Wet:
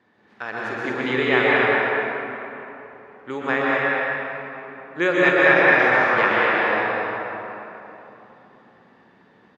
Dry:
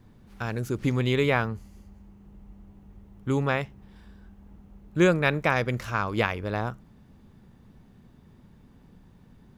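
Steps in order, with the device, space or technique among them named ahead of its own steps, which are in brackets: 0.59–1.37 HPF 130 Hz; station announcement (BPF 410–3800 Hz; bell 1800 Hz +9 dB 0.28 oct; loudspeakers at several distances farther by 16 m -10 dB, 82 m -5 dB; reverb RT60 3.3 s, pre-delay 0.113 s, DRR -5.5 dB); gain +1 dB

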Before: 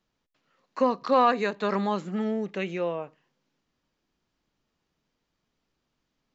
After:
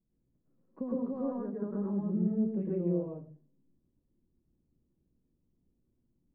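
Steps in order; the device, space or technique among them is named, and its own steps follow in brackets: 1.24–1.86 resonant high shelf 1900 Hz -9.5 dB, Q 3; television next door (compressor 3:1, threshold -29 dBFS, peak gain reduction 12 dB; LPF 250 Hz 12 dB/oct; reverb RT60 0.40 s, pre-delay 0.105 s, DRR -4 dB); gain +1 dB

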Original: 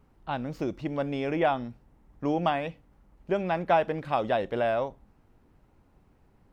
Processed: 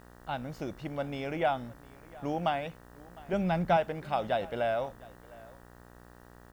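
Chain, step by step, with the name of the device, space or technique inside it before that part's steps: high shelf 4100 Hz +6.5 dB; comb 1.4 ms, depth 31%; 3.33–3.77 tone controls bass +12 dB, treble +3 dB; video cassette with head-switching buzz (buzz 60 Hz, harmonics 32, -49 dBFS -3 dB/oct; white noise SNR 35 dB); echo 0.707 s -22 dB; gain -5 dB

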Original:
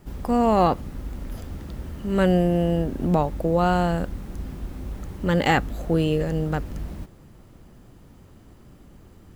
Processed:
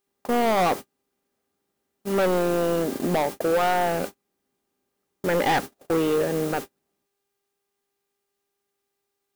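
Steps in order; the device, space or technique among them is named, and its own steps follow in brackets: aircraft radio (BPF 310–2300 Hz; hard clip -23.5 dBFS, distortion -6 dB; buzz 400 Hz, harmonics 31, -47 dBFS -7 dB/oct; white noise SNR 14 dB; gate -34 dBFS, range -42 dB); gain +5.5 dB

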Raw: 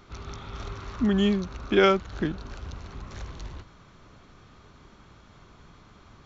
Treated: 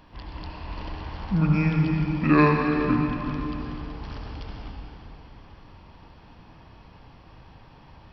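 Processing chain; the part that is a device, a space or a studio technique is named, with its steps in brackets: slowed and reverbed (varispeed -23%; reverb RT60 3.4 s, pre-delay 61 ms, DRR 1 dB)

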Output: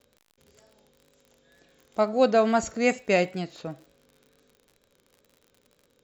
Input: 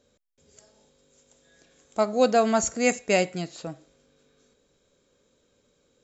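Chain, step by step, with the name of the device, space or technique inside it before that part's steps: lo-fi chain (LPF 4400 Hz 12 dB/oct; wow and flutter; crackle 52/s -43 dBFS)

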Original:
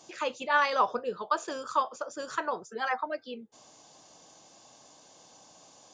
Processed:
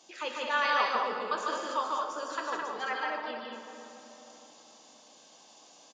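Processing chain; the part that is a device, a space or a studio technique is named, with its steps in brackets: stadium PA (HPF 190 Hz 24 dB/oct; bell 3100 Hz +6 dB 1.6 oct; loudspeakers at several distances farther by 51 m -2 dB, 73 m -5 dB; reverb RT60 3.6 s, pre-delay 15 ms, DRR 4.5 dB); gain -6.5 dB

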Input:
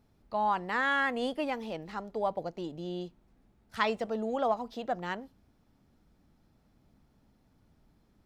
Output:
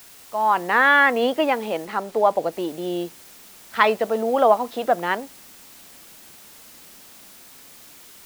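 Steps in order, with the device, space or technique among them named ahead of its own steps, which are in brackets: dictaphone (BPF 300–3200 Hz; AGC gain up to 11.5 dB; wow and flutter; white noise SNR 23 dB); 1.85–2.52 high shelf 7700 Hz -5.5 dB; gain +2 dB

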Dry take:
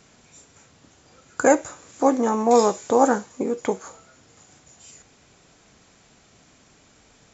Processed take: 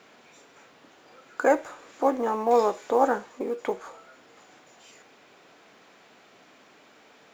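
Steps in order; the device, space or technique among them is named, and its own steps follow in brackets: phone line with mismatched companding (BPF 330–3300 Hz; G.711 law mismatch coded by mu); gain -3.5 dB

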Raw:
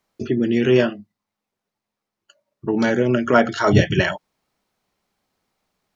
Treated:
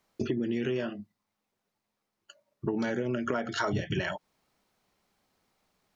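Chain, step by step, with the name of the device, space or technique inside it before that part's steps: serial compression, leveller first (compressor 3:1, threshold -16 dBFS, peak gain reduction 6 dB; compressor 8:1, threshold -27 dBFS, peak gain reduction 13.5 dB)

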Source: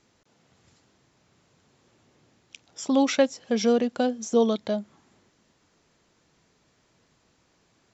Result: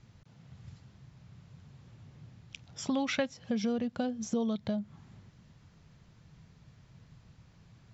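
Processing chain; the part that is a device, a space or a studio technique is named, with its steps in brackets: jukebox (LPF 5400 Hz 12 dB/oct; resonant low shelf 210 Hz +14 dB, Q 1.5; compressor 3:1, threshold -32 dBFS, peak gain reduction 12.5 dB); 2.88–3.34 bell 2000 Hz +6 dB 2.2 oct

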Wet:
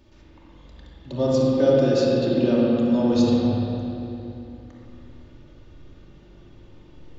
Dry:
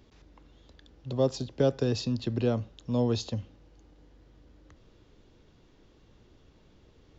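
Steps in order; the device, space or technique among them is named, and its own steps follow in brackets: 1.38–3.13 resonant low shelf 150 Hz -8.5 dB, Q 1.5; dub delay into a spring reverb (darkening echo 0.253 s, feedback 62%, low-pass 1600 Hz, level -12 dB; spring tank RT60 2.6 s, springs 42/57 ms, chirp 60 ms, DRR -2 dB); shoebox room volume 2800 m³, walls mixed, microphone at 2.6 m

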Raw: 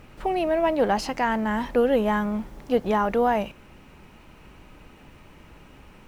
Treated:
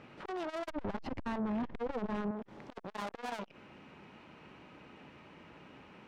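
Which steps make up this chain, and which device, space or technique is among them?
valve radio (BPF 150–4100 Hz; tube stage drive 33 dB, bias 0.6; core saturation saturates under 610 Hz); 0.7–2.31 RIAA curve playback

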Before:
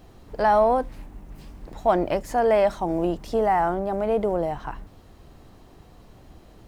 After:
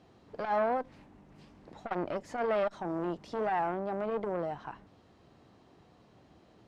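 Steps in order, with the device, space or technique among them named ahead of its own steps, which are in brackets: valve radio (BPF 120–5600 Hz; tube stage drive 13 dB, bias 0.45; core saturation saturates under 750 Hz); gain -6 dB

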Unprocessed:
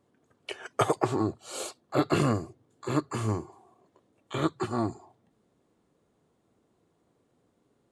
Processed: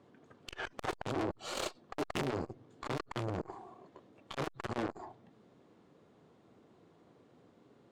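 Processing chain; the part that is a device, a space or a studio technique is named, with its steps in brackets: valve radio (BPF 96–4700 Hz; tube stage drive 39 dB, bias 0.7; core saturation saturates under 580 Hz); gain +11.5 dB

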